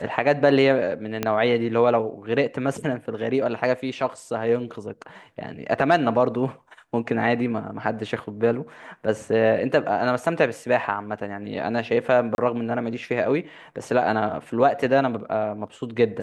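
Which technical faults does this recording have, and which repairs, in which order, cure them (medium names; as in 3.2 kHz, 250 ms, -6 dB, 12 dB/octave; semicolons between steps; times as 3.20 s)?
1.23 s: pop -9 dBFS
12.35–12.38 s: dropout 31 ms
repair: de-click; interpolate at 12.35 s, 31 ms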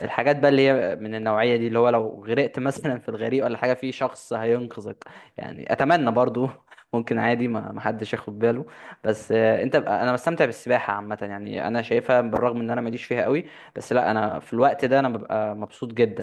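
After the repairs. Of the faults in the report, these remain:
1.23 s: pop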